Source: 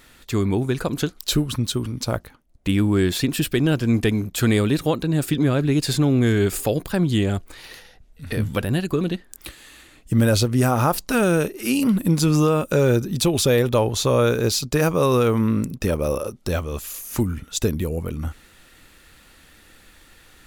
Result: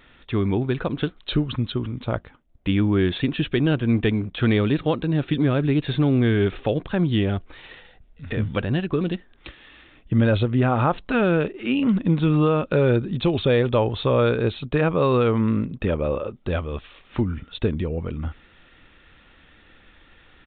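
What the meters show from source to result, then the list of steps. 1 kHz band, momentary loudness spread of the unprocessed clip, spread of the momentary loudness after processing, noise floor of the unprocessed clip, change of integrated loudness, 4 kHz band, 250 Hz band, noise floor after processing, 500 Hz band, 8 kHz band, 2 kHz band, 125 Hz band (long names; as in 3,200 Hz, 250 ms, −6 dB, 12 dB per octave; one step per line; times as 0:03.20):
−1.0 dB, 9 LU, 9 LU, −52 dBFS, −1.5 dB, −5.0 dB, −1.0 dB, −54 dBFS, −1.0 dB, below −40 dB, −1.0 dB, −1.0 dB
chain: downsampling to 8,000 Hz
level −1 dB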